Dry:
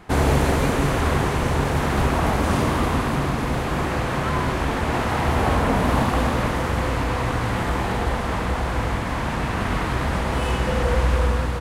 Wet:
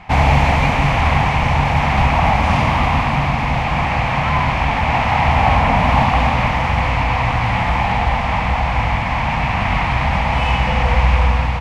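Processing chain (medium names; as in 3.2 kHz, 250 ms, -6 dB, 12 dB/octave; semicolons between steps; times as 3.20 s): FFT filter 150 Hz 0 dB, 240 Hz -5 dB, 390 Hz -16 dB, 810 Hz +6 dB, 1.5 kHz -6 dB, 2.3 kHz +8 dB, 3.7 kHz -3 dB, 5.4 kHz -4 dB, 10 kHz -18 dB; trim +6 dB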